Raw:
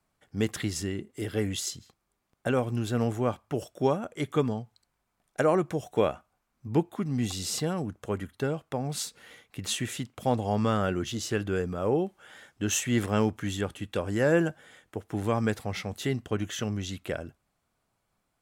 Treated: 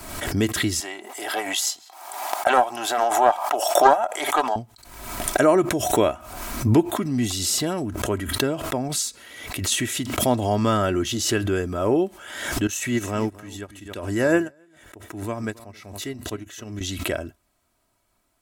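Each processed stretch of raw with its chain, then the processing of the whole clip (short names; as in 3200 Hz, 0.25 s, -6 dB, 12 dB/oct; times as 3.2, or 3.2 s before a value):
0.8–4.56 resonant high-pass 790 Hz, resonance Q 7.9 + Doppler distortion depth 0.17 ms
8.88–9.72 dynamic EQ 6800 Hz, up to +7 dB, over -46 dBFS, Q 1 + compressor 3:1, threshold -32 dBFS
12.67–16.81 notch 3200 Hz, Q 13 + echo 0.27 s -14.5 dB + upward expander 2.5:1, over -37 dBFS
whole clip: high shelf 6600 Hz +6.5 dB; comb 3.1 ms, depth 52%; backwards sustainer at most 54 dB/s; gain +5 dB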